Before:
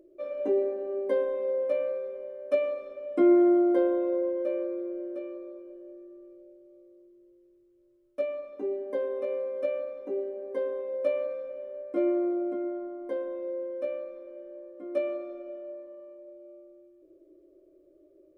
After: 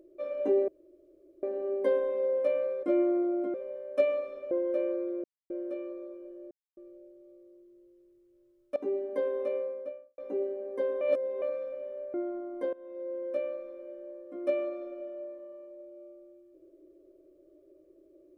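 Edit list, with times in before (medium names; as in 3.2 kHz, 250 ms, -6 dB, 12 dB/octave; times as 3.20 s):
0.68 s: insert room tone 0.75 s
3.05–4.22 s: delete
4.95 s: insert silence 0.26 s
5.96–6.22 s: mute
8.21–8.53 s: delete
9.20–9.95 s: studio fade out
10.78–11.19 s: reverse
11.91–12.62 s: move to 2.08 s
13.21–13.74 s: fade in, from -20.5 dB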